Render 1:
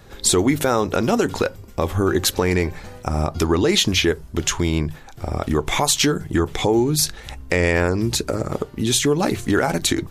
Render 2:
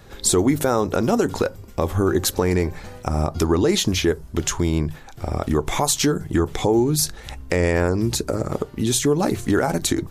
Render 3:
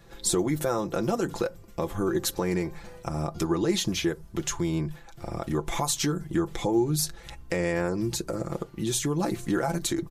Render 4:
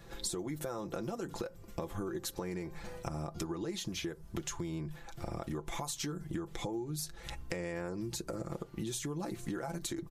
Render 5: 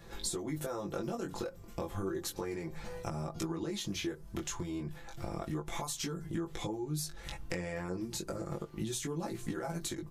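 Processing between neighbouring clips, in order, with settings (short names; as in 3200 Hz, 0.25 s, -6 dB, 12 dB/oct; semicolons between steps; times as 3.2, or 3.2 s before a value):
dynamic EQ 2700 Hz, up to -7 dB, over -36 dBFS, Q 0.82
comb 5.9 ms, depth 65%; gain -8.5 dB
compressor 10:1, threshold -35 dBFS, peak gain reduction 16 dB
chorus 0.32 Hz, delay 18 ms, depth 4 ms; gain +4 dB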